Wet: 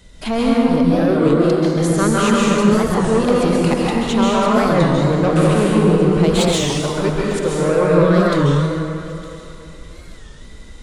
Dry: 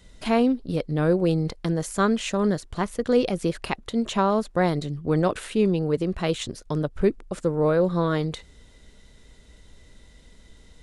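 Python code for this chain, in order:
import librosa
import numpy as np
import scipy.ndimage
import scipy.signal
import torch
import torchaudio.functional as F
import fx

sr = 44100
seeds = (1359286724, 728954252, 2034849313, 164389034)

p1 = fx.highpass(x, sr, hz=190.0, slope=24, at=(0.83, 1.76))
p2 = fx.tilt_shelf(p1, sr, db=-6.5, hz=860.0, at=(6.35, 7.63))
p3 = 10.0 ** (-19.5 / 20.0) * np.tanh(p2 / 10.0 ** (-19.5 / 20.0))
p4 = p3 + fx.echo_wet_highpass(p3, sr, ms=895, feedback_pct=51, hz=2200.0, wet_db=-17.5, dry=0)
p5 = fx.rev_plate(p4, sr, seeds[0], rt60_s=2.9, hf_ratio=0.5, predelay_ms=120, drr_db=-5.5)
p6 = fx.record_warp(p5, sr, rpm=33.33, depth_cents=160.0)
y = F.gain(torch.from_numpy(p6), 5.5).numpy()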